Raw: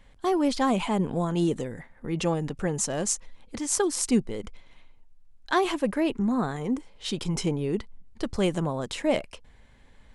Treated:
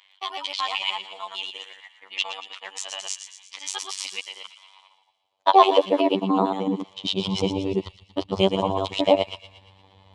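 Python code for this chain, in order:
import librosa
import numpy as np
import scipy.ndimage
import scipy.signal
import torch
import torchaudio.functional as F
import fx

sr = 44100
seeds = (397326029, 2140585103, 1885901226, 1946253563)

p1 = fx.local_reverse(x, sr, ms=75.0)
p2 = fx.curve_eq(p1, sr, hz=(220.0, 1000.0, 1600.0, 3100.0, 9500.0), db=(0, 12, -9, 11, -12))
p3 = fx.robotise(p2, sr, hz=96.3)
p4 = fx.filter_sweep_highpass(p3, sr, from_hz=1900.0, to_hz=83.0, start_s=4.23, end_s=7.55, q=2.0)
p5 = p4 + fx.echo_wet_highpass(p4, sr, ms=116, feedback_pct=54, hz=2100.0, wet_db=-10, dry=0)
y = F.gain(torch.from_numpy(p5), 2.0).numpy()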